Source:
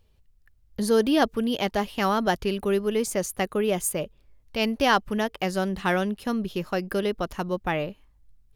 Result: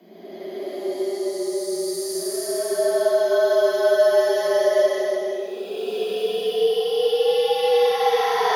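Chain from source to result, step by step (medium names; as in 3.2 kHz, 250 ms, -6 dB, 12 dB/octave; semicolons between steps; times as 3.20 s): Paulstretch 19×, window 0.10 s, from 0.75 s; frequency shift +170 Hz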